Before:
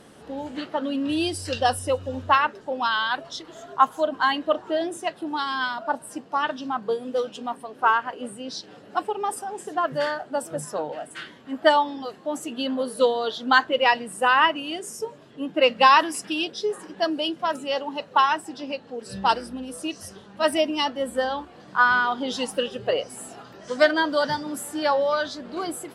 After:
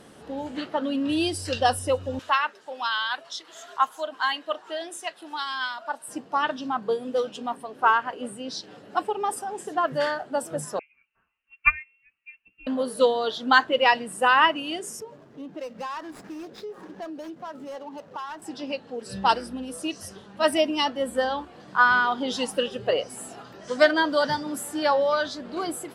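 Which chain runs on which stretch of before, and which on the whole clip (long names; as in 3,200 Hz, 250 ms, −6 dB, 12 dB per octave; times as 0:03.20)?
0:02.19–0:06.08: high-pass filter 1,400 Hz 6 dB per octave + one half of a high-frequency compander encoder only
0:10.79–0:12.67: notch comb filter 220 Hz + voice inversion scrambler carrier 3,000 Hz + expander for the loud parts 2.5 to 1, over −35 dBFS
0:15.00–0:18.42: running median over 15 samples + high-shelf EQ 9,300 Hz −9.5 dB + downward compressor 3 to 1, threshold −37 dBFS
whole clip: no processing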